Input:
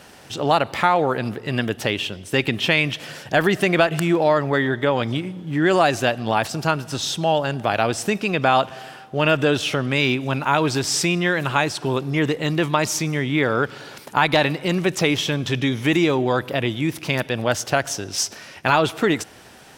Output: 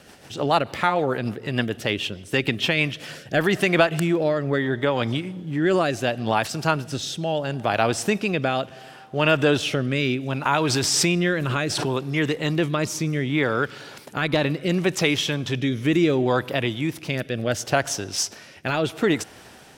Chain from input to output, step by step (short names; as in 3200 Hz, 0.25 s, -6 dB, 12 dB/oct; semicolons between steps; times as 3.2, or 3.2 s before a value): rotary speaker horn 6.7 Hz, later 0.7 Hz, at 2.53; 10.45–11.92 backwards sustainer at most 21 dB/s